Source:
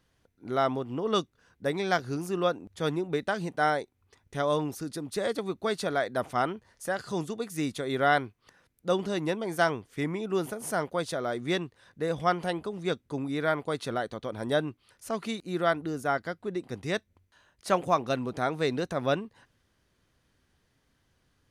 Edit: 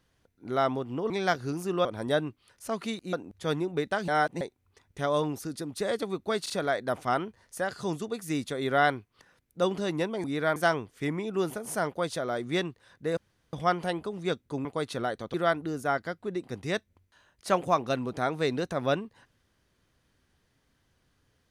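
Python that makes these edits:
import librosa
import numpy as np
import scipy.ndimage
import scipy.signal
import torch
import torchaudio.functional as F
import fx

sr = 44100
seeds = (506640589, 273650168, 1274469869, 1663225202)

y = fx.edit(x, sr, fx.cut(start_s=1.1, length_s=0.64),
    fx.reverse_span(start_s=3.44, length_s=0.33),
    fx.stutter(start_s=5.78, slice_s=0.04, count=3),
    fx.insert_room_tone(at_s=12.13, length_s=0.36),
    fx.move(start_s=13.25, length_s=0.32, to_s=9.52),
    fx.move(start_s=14.26, length_s=1.28, to_s=2.49), tone=tone)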